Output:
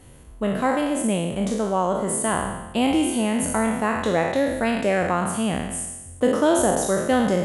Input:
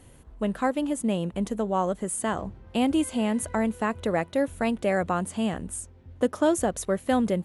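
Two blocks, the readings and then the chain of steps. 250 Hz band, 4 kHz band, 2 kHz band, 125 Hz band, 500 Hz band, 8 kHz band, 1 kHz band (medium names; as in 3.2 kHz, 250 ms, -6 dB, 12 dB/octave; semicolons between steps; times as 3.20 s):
+3.5 dB, +6.5 dB, +6.5 dB, +4.5 dB, +5.0 dB, +7.0 dB, +5.0 dB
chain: spectral sustain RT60 1.06 s; trim +2 dB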